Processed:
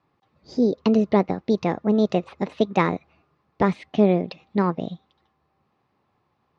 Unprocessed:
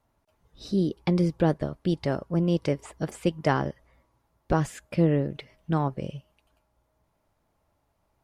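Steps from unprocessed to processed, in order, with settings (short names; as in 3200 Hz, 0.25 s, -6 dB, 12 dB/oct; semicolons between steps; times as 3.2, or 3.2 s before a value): wide varispeed 1.25×; speaker cabinet 130–4500 Hz, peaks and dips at 710 Hz -4 dB, 1500 Hz -7 dB, 3100 Hz -4 dB; gain +5.5 dB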